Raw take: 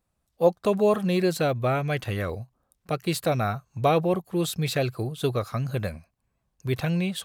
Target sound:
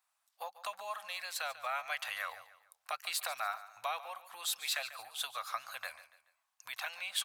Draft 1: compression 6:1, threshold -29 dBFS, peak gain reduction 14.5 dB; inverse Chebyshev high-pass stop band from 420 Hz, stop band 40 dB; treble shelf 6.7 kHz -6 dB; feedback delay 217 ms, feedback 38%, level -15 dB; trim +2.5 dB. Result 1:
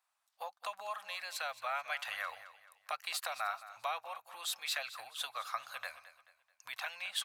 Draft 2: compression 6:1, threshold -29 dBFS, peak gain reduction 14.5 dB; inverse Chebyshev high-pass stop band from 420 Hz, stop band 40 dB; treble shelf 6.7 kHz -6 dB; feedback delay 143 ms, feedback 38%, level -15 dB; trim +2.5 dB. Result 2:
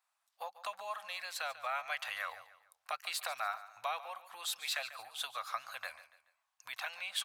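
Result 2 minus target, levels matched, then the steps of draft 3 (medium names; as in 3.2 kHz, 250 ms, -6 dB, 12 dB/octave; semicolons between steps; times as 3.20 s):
8 kHz band -2.5 dB
compression 6:1, threshold -29 dBFS, peak gain reduction 14.5 dB; inverse Chebyshev high-pass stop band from 420 Hz, stop band 40 dB; feedback delay 143 ms, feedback 38%, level -15 dB; trim +2.5 dB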